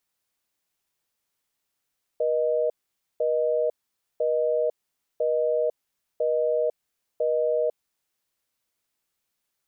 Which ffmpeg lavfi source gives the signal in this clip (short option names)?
-f lavfi -i "aevalsrc='0.0668*(sin(2*PI*480*t)+sin(2*PI*620*t))*clip(min(mod(t,1),0.5-mod(t,1))/0.005,0,1)':d=5.72:s=44100"